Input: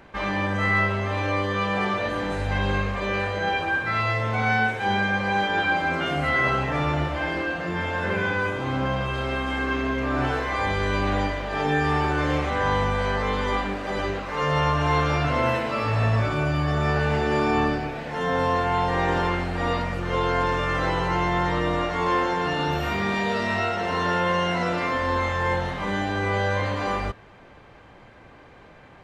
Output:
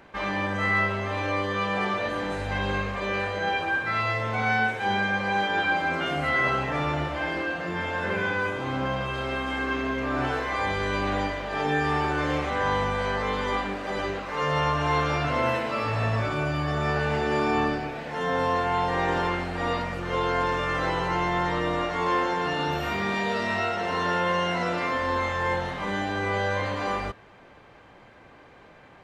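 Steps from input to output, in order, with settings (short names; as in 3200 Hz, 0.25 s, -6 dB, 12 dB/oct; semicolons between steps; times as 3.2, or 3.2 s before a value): low shelf 130 Hz -6.5 dB; gain -1.5 dB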